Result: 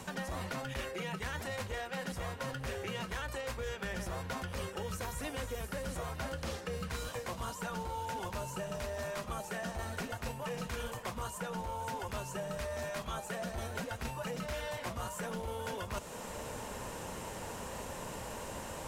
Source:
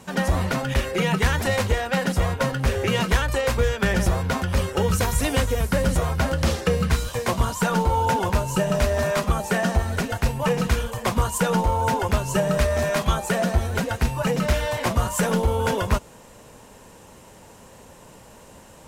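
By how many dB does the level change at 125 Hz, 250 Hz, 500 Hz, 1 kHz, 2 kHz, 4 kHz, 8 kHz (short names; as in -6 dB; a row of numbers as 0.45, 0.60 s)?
-19.0, -17.5, -15.5, -14.5, -14.0, -14.0, -13.5 dB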